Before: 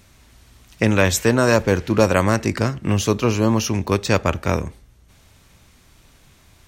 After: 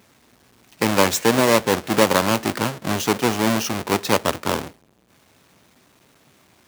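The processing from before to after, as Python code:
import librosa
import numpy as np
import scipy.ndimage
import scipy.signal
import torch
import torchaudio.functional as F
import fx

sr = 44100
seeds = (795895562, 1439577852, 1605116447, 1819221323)

y = fx.halfwave_hold(x, sr)
y = scipy.signal.sosfilt(scipy.signal.butter(2, 200.0, 'highpass', fs=sr, output='sos'), y)
y = y * librosa.db_to_amplitude(-4.0)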